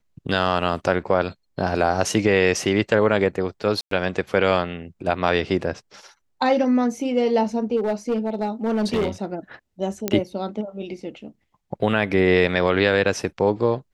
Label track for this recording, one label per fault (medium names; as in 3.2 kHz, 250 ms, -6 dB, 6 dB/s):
3.810000	3.910000	dropout 103 ms
7.760000	9.250000	clipped -17.5 dBFS
10.080000	10.080000	pop -7 dBFS